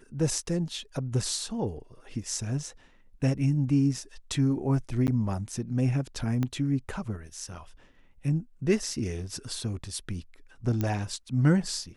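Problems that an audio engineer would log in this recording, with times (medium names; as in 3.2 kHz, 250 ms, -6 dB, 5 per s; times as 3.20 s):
5.07–5.08 s: dropout 9.6 ms
6.43 s: pop -17 dBFS
10.81 s: pop -16 dBFS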